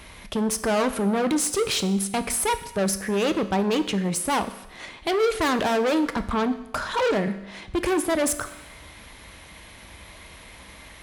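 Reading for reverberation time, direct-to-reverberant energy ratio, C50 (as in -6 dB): 0.90 s, 9.5 dB, 13.0 dB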